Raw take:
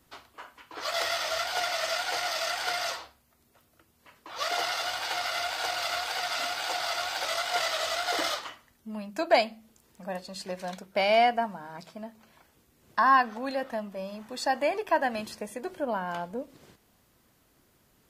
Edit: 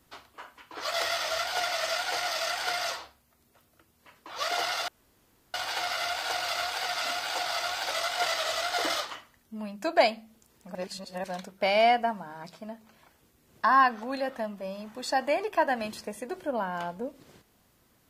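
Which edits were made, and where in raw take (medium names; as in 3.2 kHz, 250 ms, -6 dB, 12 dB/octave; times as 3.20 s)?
4.88 s: insert room tone 0.66 s
10.09–10.58 s: reverse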